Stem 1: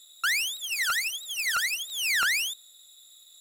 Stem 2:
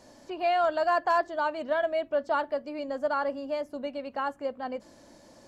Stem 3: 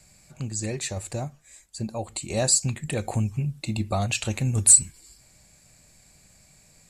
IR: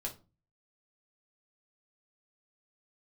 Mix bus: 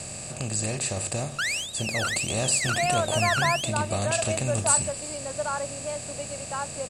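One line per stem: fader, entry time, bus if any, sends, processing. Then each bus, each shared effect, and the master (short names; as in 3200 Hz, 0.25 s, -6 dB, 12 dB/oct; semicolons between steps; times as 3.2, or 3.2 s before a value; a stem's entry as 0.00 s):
-2.0 dB, 1.15 s, no send, dry
-1.0 dB, 2.35 s, no send, HPF 430 Hz
-7.0 dB, 0.00 s, no send, per-bin compression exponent 0.4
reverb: off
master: LPF 8100 Hz 12 dB/oct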